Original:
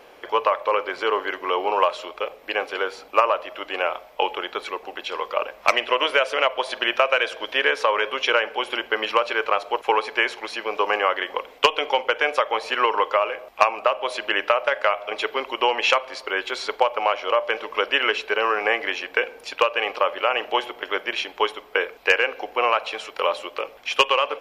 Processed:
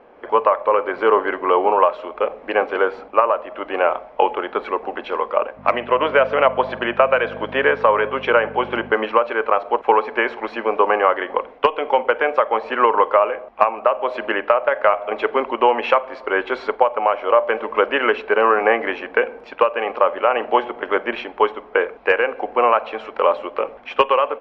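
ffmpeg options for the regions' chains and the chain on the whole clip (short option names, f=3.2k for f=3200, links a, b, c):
-filter_complex "[0:a]asettb=1/sr,asplit=3[a][b][c];[a]atrim=end=5.574[d];[b]atrim=start=5.57:end=8.92,asetpts=PTS-STARTPTS,afade=t=in:d=0.004:c=qsin,afade=t=out:st=3.346:d=0.004:c=qsin,aeval=exprs='val(0)+0.01*(sin(2*PI*50*n/s)+sin(2*PI*2*50*n/s)/2+sin(2*PI*3*50*n/s)/3+sin(2*PI*4*50*n/s)/4+sin(2*PI*5*50*n/s)/5)':c=same,highpass=120,lowpass=5.7k[e];[c]atrim=start=8.916[f];[d][e]acrossfade=d=0.004:c1=hsin:c2=qsin[g];[g][f]acrossfade=d=0.004:c1=qsin:c2=hsin,lowpass=1.4k,equalizer=f=230:t=o:w=0.3:g=9,dynaudnorm=f=150:g=3:m=9dB"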